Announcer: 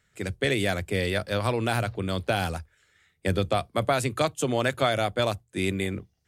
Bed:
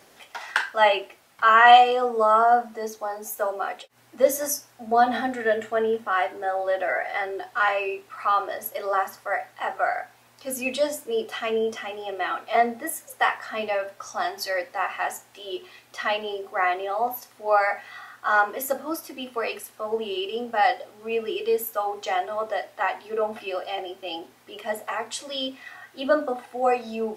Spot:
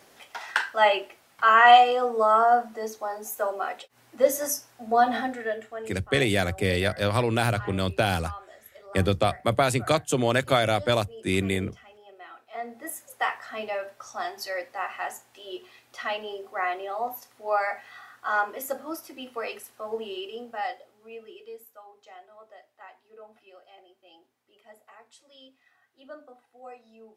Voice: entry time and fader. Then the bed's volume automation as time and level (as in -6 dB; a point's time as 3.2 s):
5.70 s, +2.0 dB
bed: 5.19 s -1.5 dB
6.1 s -18.5 dB
12.5 s -18.5 dB
12.9 s -5 dB
20.03 s -5 dB
21.86 s -22.5 dB